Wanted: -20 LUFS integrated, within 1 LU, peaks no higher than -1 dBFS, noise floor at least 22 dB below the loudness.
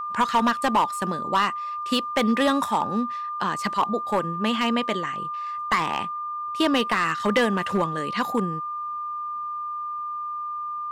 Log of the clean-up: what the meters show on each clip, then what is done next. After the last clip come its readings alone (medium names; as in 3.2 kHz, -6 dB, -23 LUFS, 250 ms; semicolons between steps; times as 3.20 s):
clipped samples 0.7%; clipping level -14.5 dBFS; steady tone 1.2 kHz; tone level -28 dBFS; loudness -25.0 LUFS; peak level -14.5 dBFS; loudness target -20.0 LUFS
-> clip repair -14.5 dBFS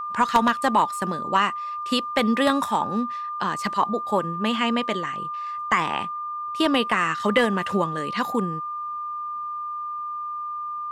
clipped samples 0.0%; steady tone 1.2 kHz; tone level -28 dBFS
-> band-stop 1.2 kHz, Q 30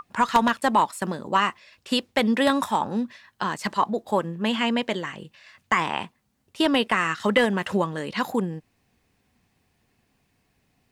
steady tone not found; loudness -24.5 LUFS; peak level -6.0 dBFS; loudness target -20.0 LUFS
-> trim +4.5 dB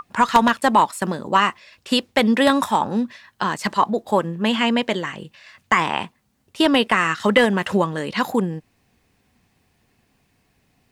loudness -20.0 LUFS; peak level -1.5 dBFS; noise floor -65 dBFS